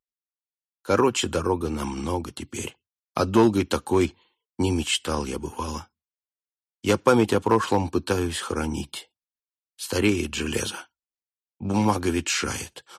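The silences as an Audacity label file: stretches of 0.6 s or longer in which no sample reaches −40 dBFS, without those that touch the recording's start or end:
5.830000	6.840000	silence
9.030000	9.790000	silence
10.830000	11.610000	silence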